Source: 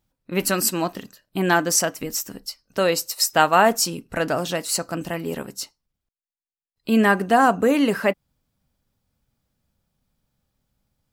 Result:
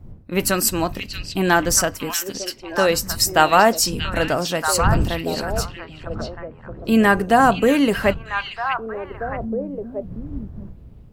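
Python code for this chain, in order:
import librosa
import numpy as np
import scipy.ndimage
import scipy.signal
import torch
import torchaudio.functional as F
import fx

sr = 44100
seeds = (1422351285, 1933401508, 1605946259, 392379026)

y = fx.dmg_wind(x, sr, seeds[0], corner_hz=110.0, level_db=-33.0)
y = fx.echo_stepped(y, sr, ms=633, hz=3200.0, octaves=-1.4, feedback_pct=70, wet_db=-2)
y = y * librosa.db_to_amplitude(2.0)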